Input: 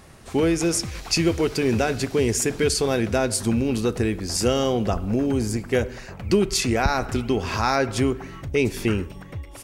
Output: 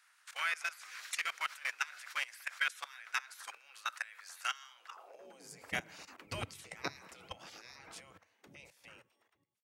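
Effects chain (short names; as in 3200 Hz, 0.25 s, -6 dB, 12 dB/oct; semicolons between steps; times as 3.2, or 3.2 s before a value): ending faded out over 2.58 s; dynamic EQ 2100 Hz, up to +4 dB, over -45 dBFS, Q 5.9; level quantiser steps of 20 dB; spectral gate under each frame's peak -15 dB weak; high-pass sweep 1400 Hz -> 97 Hz, 4.86–5.67; gain -4 dB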